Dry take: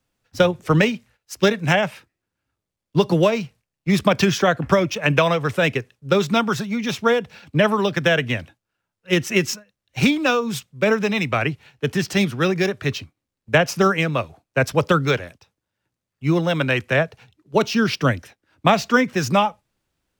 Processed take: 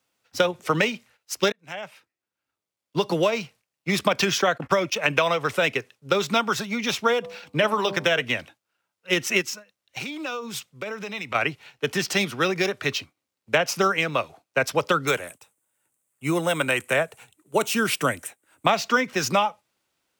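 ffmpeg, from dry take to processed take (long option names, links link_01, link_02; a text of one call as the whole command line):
ffmpeg -i in.wav -filter_complex "[0:a]asplit=3[link_01][link_02][link_03];[link_01]afade=type=out:start_time=4.37:duration=0.02[link_04];[link_02]agate=range=-22dB:threshold=-31dB:ratio=16:release=100:detection=peak,afade=type=in:start_time=4.37:duration=0.02,afade=type=out:start_time=4.96:duration=0.02[link_05];[link_03]afade=type=in:start_time=4.96:duration=0.02[link_06];[link_04][link_05][link_06]amix=inputs=3:normalize=0,asplit=3[link_07][link_08][link_09];[link_07]afade=type=out:start_time=7.22:duration=0.02[link_10];[link_08]bandreject=frequency=98.57:width_type=h:width=4,bandreject=frequency=197.14:width_type=h:width=4,bandreject=frequency=295.71:width_type=h:width=4,bandreject=frequency=394.28:width_type=h:width=4,bandreject=frequency=492.85:width_type=h:width=4,bandreject=frequency=591.42:width_type=h:width=4,bandreject=frequency=689.99:width_type=h:width=4,bandreject=frequency=788.56:width_type=h:width=4,bandreject=frequency=887.13:width_type=h:width=4,bandreject=frequency=985.7:width_type=h:width=4,bandreject=frequency=1084.27:width_type=h:width=4,bandreject=frequency=1182.84:width_type=h:width=4,afade=type=in:start_time=7.22:duration=0.02,afade=type=out:start_time=8.21:duration=0.02[link_11];[link_09]afade=type=in:start_time=8.21:duration=0.02[link_12];[link_10][link_11][link_12]amix=inputs=3:normalize=0,asplit=3[link_13][link_14][link_15];[link_13]afade=type=out:start_time=9.41:duration=0.02[link_16];[link_14]acompressor=threshold=-28dB:ratio=12:attack=3.2:release=140:knee=1:detection=peak,afade=type=in:start_time=9.41:duration=0.02,afade=type=out:start_time=11.34:duration=0.02[link_17];[link_15]afade=type=in:start_time=11.34:duration=0.02[link_18];[link_16][link_17][link_18]amix=inputs=3:normalize=0,asettb=1/sr,asplit=3[link_19][link_20][link_21];[link_19]atrim=end=15.074[link_22];[link_20]atrim=start=15.07:end=18.66,asetpts=PTS-STARTPTS,afade=type=in:duration=0.004:curve=qsin,afade=type=out:start_time=3.586:duration=0.004:curve=qsin,highshelf=frequency=6600:width_type=q:width=3:gain=9.5[link_23];[link_21]atrim=start=18.656[link_24];[link_22][link_23]acrossfade=duration=0.004:curve1=hsin:curve2=qsin[link_25];[link_25][link_24]acrossfade=duration=0.004:curve1=qsin:curve2=hsin,asplit=2[link_26][link_27];[link_26]atrim=end=1.52,asetpts=PTS-STARTPTS,afade=type=out:start_time=1.516:duration=0.004:curve=hsin[link_28];[link_27]atrim=start=1.52,asetpts=PTS-STARTPTS,afade=type=in:duration=1.84[link_29];[link_28][link_29]concat=n=2:v=0:a=1,highpass=frequency=560:poles=1,bandreject=frequency=1700:width=17,acompressor=threshold=-24dB:ratio=2,volume=3.5dB" out.wav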